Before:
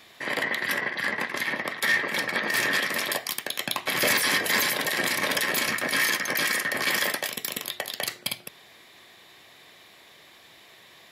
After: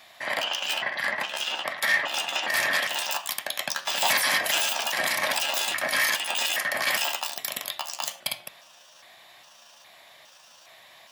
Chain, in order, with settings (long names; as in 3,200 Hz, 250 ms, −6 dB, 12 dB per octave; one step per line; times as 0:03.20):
pitch shifter gated in a rhythm +7.5 semitones, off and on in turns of 410 ms
low shelf with overshoot 520 Hz −6 dB, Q 3
hum removal 97.26 Hz, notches 37